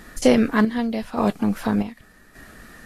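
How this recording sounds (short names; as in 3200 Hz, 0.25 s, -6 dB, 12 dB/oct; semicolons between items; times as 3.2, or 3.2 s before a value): a quantiser's noise floor 10-bit, dither triangular; chopped level 0.85 Hz, depth 60%, duty 55%; Vorbis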